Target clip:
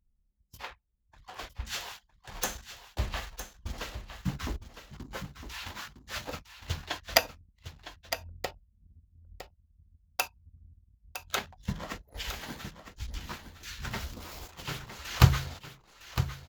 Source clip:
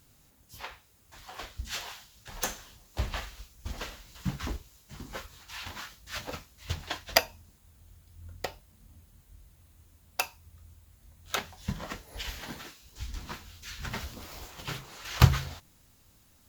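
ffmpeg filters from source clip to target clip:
-af "anlmdn=0.0158,aecho=1:1:959:0.299"

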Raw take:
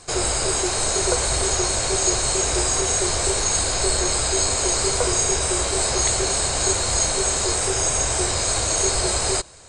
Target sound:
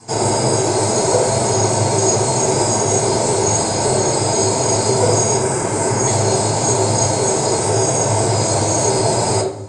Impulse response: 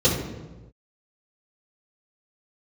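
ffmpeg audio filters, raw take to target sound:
-filter_complex "[0:a]asettb=1/sr,asplit=3[a][b][c];[a]atrim=end=5.374[d];[b]atrim=start=5.37:end=6.07,asetpts=PTS-STARTPTS,afade=t=in:d=0.004:c=qsin,afade=t=out:st=0.696:d=0.004:c=qsin,equalizer=f=630:t=o:w=0.67:g=-5,equalizer=f=1.6k:t=o:w=0.67:g=4,equalizer=f=4k:t=o:w=0.67:g=-10[e];[c]atrim=start=6.066[f];[d][e]acrossfade=d=0.004:c1=hsin:c2=qsin[g];[g][f]acrossfade=d=0.004:c1=qsin:c2=hsin[h];[1:a]atrim=start_sample=2205,asetrate=79380,aresample=44100[i];[h][i]afir=irnorm=-1:irlink=0,volume=-10dB"

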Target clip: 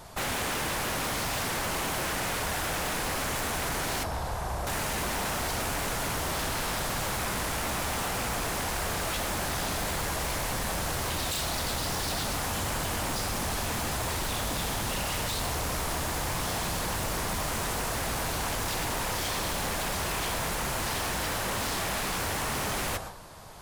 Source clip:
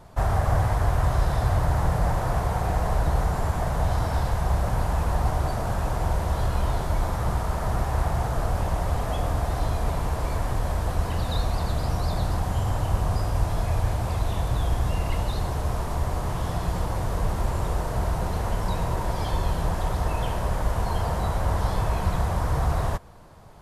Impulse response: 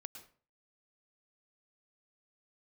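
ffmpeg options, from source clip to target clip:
-filter_complex "[0:a]highshelf=f=2k:g=10.5,asplit=2[a][b];[1:a]atrim=start_sample=2205,lowshelf=f=200:g=-11[c];[b][c]afir=irnorm=-1:irlink=0,volume=6.5dB[d];[a][d]amix=inputs=2:normalize=0,asettb=1/sr,asplit=3[e][f][g];[e]atrim=end=4.034[h];[f]atrim=start=4.03:end=4.67,asetpts=PTS-STARTPTS,afade=t=in:d=0.004:c=qsin,afade=t=out:st=0.636:d=0.004:c=qsin,acrossover=split=230|1300[i][j][k];[i]acompressor=threshold=-29dB:ratio=4[l];[j]acompressor=threshold=-29dB:ratio=4[m];[k]acompressor=threshold=-40dB:ratio=4[n];[l][m][n]amix=inputs=3:normalize=0[o];[g]atrim=start=4.666[p];[h][o]acrossfade=d=0.004:c1=hsin:c2=qsin[q];[q][p]acrossfade=d=0.004:c1=qsin:c2=hsin,aeval=exprs='0.0841*(abs(mod(val(0)/0.0841+3,4)-2)-1)':c=same,volume=-4.5dB"

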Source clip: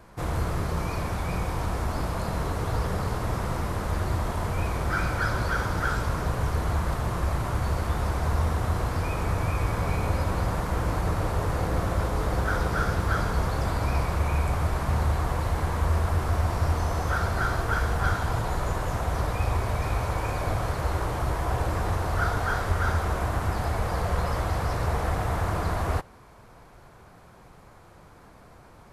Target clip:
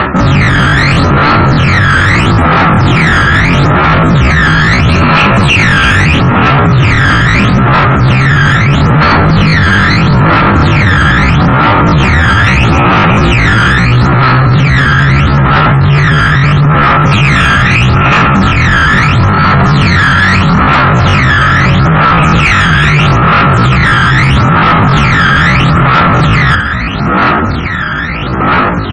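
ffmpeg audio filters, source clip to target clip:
-af "aecho=1:1:55|559:0.133|0.316,aphaser=in_gain=1:out_gain=1:delay=1.1:decay=0.77:speed=0.77:type=sinusoidal,lowpass=3.2k,bandreject=f=60:t=h:w=6,bandreject=f=120:t=h:w=6,bandreject=f=180:t=h:w=6,bandreject=f=240:t=h:w=6,bandreject=f=300:t=h:w=6,dynaudnorm=f=990:g=7:m=10dB,equalizer=f=750:t=o:w=0.45:g=11.5,asetrate=78577,aresample=44100,atempo=0.561231,areverse,acompressor=threshold=-28dB:ratio=10,areverse,highpass=74,bandreject=f=1.5k:w=19,apsyclip=34dB,afftfilt=real='re*gte(hypot(re,im),0.0631)':imag='im*gte(hypot(re,im),0.0631)':win_size=1024:overlap=0.75,volume=-2dB"

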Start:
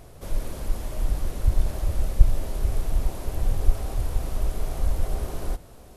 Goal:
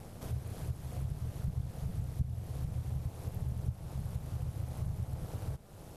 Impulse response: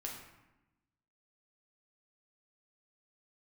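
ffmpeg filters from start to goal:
-af "acompressor=threshold=-39dB:ratio=2.5,aeval=exprs='val(0)*sin(2*PI*100*n/s)':c=same,volume=1dB"

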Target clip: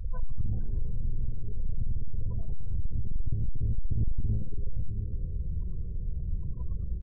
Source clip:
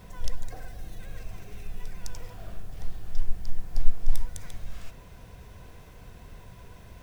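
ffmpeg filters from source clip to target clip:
-filter_complex "[0:a]acompressor=threshold=-39dB:ratio=2.5,lowshelf=f=100:t=q:w=3:g=7,afftfilt=real='re*gte(hypot(re,im),0.0141)':imag='im*gte(hypot(re,im),0.0141)':win_size=1024:overlap=0.75,asplit=2[a][b];[b]asplit=5[c][d][e][f][g];[c]adelay=108,afreqshift=100,volume=-8dB[h];[d]adelay=216,afreqshift=200,volume=-16dB[i];[e]adelay=324,afreqshift=300,volume=-23.9dB[j];[f]adelay=432,afreqshift=400,volume=-31.9dB[k];[g]adelay=540,afreqshift=500,volume=-39.8dB[l];[h][i][j][k][l]amix=inputs=5:normalize=0[m];[a][m]amix=inputs=2:normalize=0,asplit=3[n][o][p];[o]asetrate=22050,aresample=44100,atempo=2,volume=-3dB[q];[p]asetrate=29433,aresample=44100,atempo=1.49831,volume=-5dB[r];[n][q][r]amix=inputs=3:normalize=0,aecho=1:1:1.9:0.72,acontrast=64,aresample=16000,asoftclip=type=tanh:threshold=-14dB,aresample=44100,volume=-6dB"

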